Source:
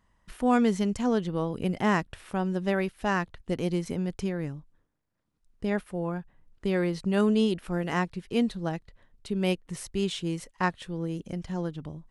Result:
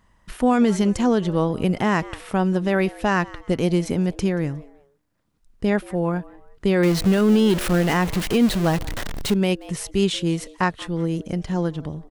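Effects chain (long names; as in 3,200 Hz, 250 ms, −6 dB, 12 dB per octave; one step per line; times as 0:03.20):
0:06.83–0:09.34: converter with a step at zero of −30.5 dBFS
echo with shifted repeats 180 ms, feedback 32%, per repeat +140 Hz, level −23 dB
brickwall limiter −17.5 dBFS, peak gain reduction 6.5 dB
level +8.5 dB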